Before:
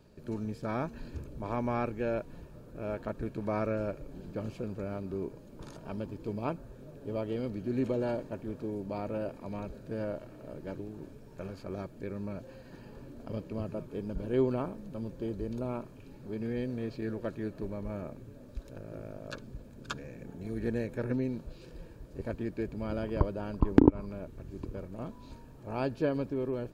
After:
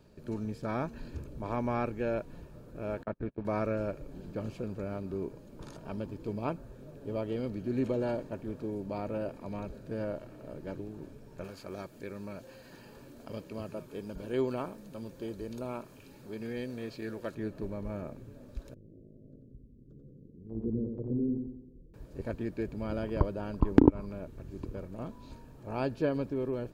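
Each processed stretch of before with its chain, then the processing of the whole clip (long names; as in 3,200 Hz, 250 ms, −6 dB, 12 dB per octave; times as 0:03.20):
0:03.03–0:03.45: low-pass filter 3,000 Hz + noise gate −38 dBFS, range −32 dB
0:11.44–0:17.35: spectral tilt +2 dB per octave + upward compression, threshold −48 dBFS
0:18.74–0:21.94: inverse Chebyshev low-pass filter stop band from 830 Hz + noise gate −37 dBFS, range −9 dB + repeating echo 89 ms, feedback 47%, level −4.5 dB
whole clip: no processing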